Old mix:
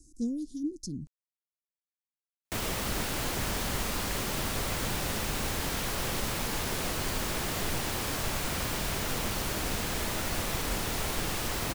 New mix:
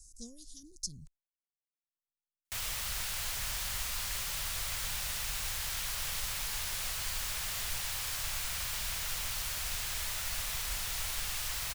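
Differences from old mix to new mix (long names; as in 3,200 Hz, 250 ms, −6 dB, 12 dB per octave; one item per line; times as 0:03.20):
speech +6.0 dB
master: add guitar amp tone stack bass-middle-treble 10-0-10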